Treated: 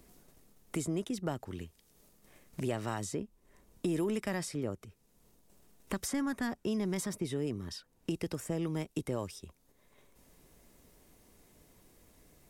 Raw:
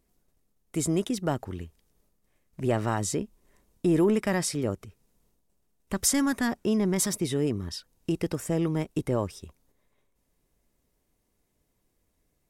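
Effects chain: three bands compressed up and down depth 70%; trim -8 dB

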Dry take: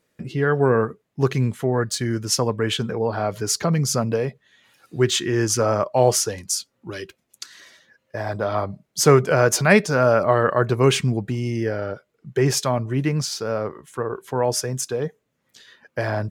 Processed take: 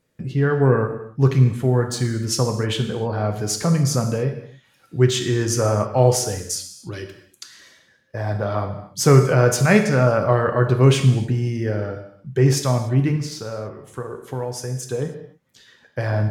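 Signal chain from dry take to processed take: bass shelf 170 Hz +11 dB; 13.16–14.87 s: compression 3:1, threshold -25 dBFS, peak gain reduction 9 dB; gated-style reverb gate 320 ms falling, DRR 5 dB; trim -3 dB

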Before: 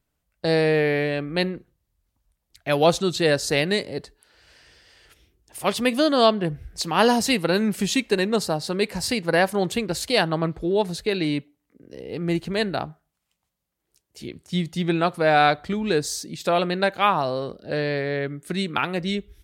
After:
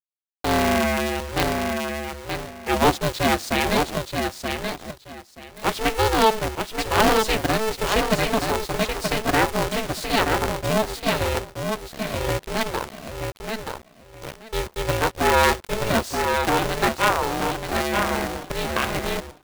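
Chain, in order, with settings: high-pass 69 Hz 24 dB/octave; tone controls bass -3 dB, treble -8 dB; bit crusher 6-bit; feedback delay 928 ms, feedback 19%, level -5 dB; polarity switched at an audio rate 220 Hz

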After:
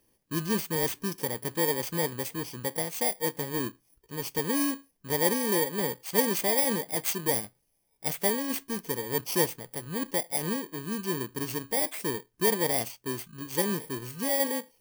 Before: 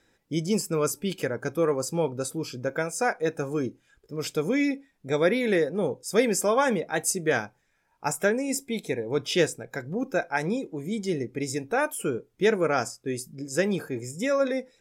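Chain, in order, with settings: bit-reversed sample order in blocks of 32 samples; trim -3 dB

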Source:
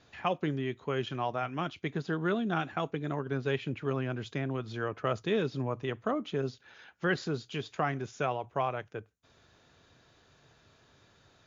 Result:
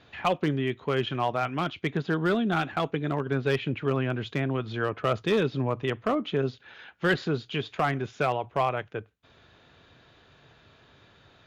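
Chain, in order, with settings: resonant high shelf 4.5 kHz -8 dB, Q 1.5; one-sided clip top -23 dBFS; trim +5.5 dB

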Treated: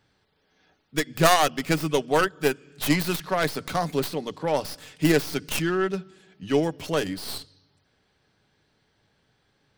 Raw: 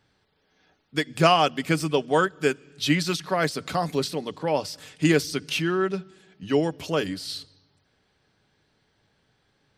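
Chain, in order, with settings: tracing distortion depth 0.37 ms

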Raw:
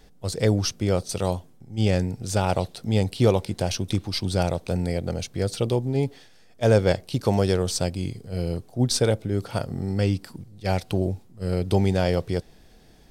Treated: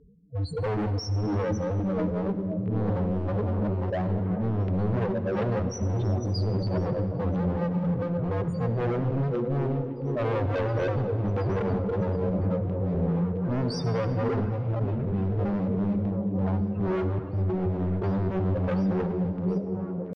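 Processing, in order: backward echo that repeats 170 ms, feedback 56%, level -3 dB; high-pass 79 Hz 12 dB/octave; treble shelf 8.8 kHz +6.5 dB; band-stop 3.1 kHz, Q 8.8; in parallel at +2.5 dB: peak limiter -14.5 dBFS, peak gain reduction 9 dB; on the sum: loudest bins only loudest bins 4; LFO notch saw down 2.3 Hz 220–2500 Hz; tempo 0.65×; overload inside the chain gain 25.5 dB; distance through air 150 m; repeats whose band climbs or falls 723 ms, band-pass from 250 Hz, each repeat 0.7 oct, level -2.5 dB; on a send at -11.5 dB: reverberation RT60 2.1 s, pre-delay 58 ms

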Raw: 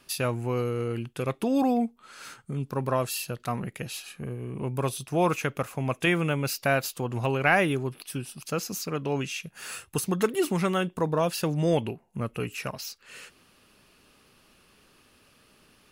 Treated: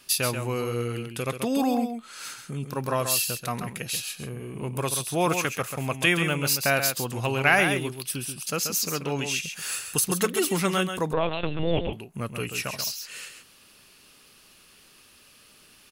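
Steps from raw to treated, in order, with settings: treble shelf 2.2 kHz +11 dB; on a send: delay 134 ms -7.5 dB; 11.13–11.93 s: on the sum: LPC vocoder at 8 kHz pitch kept; trim -1.5 dB

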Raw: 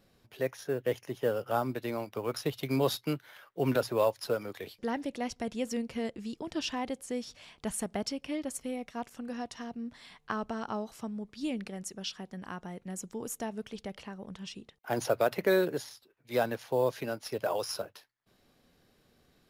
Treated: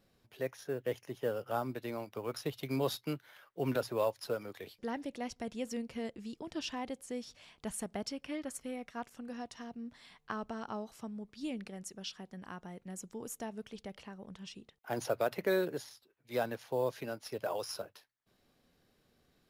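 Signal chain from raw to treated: 8.11–9.05 s: dynamic bell 1.5 kHz, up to +7 dB, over -56 dBFS, Q 1.6; trim -5 dB

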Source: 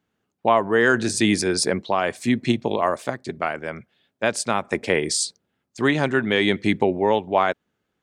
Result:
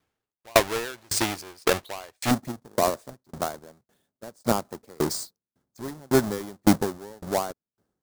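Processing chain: square wave that keeps the level; peaking EQ 200 Hz -12 dB 1.2 oct, from 2.31 s 2.6 kHz; sawtooth tremolo in dB decaying 1.8 Hz, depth 37 dB; trim +1.5 dB

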